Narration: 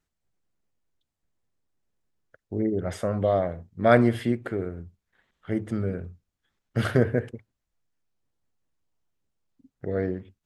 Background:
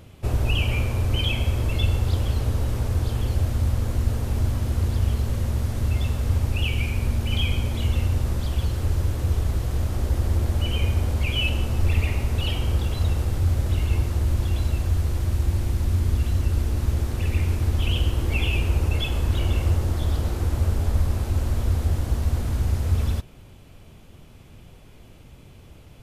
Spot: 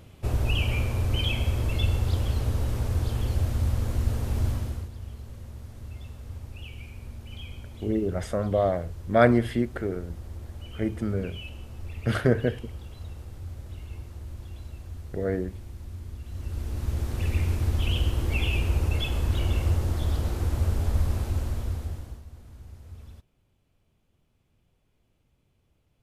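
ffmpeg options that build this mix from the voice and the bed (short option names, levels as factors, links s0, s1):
-filter_complex "[0:a]adelay=5300,volume=0.944[s0];[1:a]volume=3.55,afade=t=out:st=4.5:d=0.39:silence=0.199526,afade=t=in:st=16.25:d=0.99:silence=0.199526,afade=t=out:st=21.18:d=1.06:silence=0.105925[s1];[s0][s1]amix=inputs=2:normalize=0"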